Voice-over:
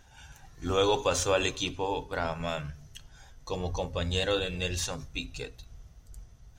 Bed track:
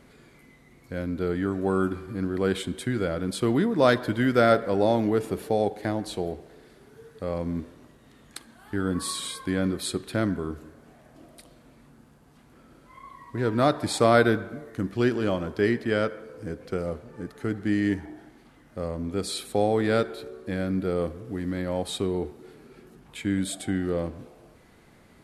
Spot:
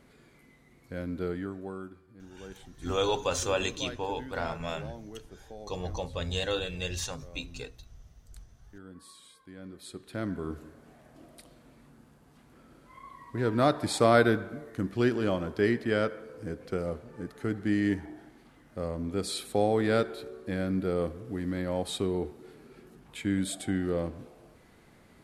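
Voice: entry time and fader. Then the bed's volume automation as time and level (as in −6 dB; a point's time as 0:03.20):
2.20 s, −2.5 dB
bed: 0:01.26 −5 dB
0:02.03 −21.5 dB
0:09.53 −21.5 dB
0:10.53 −2.5 dB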